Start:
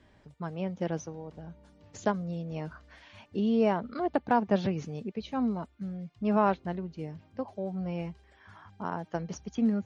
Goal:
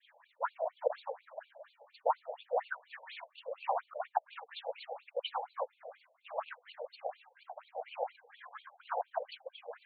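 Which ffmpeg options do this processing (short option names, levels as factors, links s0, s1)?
-filter_complex "[0:a]agate=range=0.0224:threshold=0.00126:ratio=3:detection=peak,areverse,acompressor=threshold=0.0178:ratio=10,areverse,afftfilt=real='hypot(re,im)*cos(2*PI*random(0))':imag='hypot(re,im)*sin(2*PI*random(1))':win_size=512:overlap=0.75,asplit=2[s0][s1];[s1]adynamicsmooth=sensitivity=4.5:basefreq=550,volume=0.841[s2];[s0][s2]amix=inputs=2:normalize=0,aphaser=in_gain=1:out_gain=1:delay=3:decay=0.52:speed=0.77:type=triangular,afftfilt=real='re*between(b*sr/1024,620*pow(3300/620,0.5+0.5*sin(2*PI*4.2*pts/sr))/1.41,620*pow(3300/620,0.5+0.5*sin(2*PI*4.2*pts/sr))*1.41)':imag='im*between(b*sr/1024,620*pow(3300/620,0.5+0.5*sin(2*PI*4.2*pts/sr))/1.41,620*pow(3300/620,0.5+0.5*sin(2*PI*4.2*pts/sr))*1.41)':win_size=1024:overlap=0.75,volume=6.31"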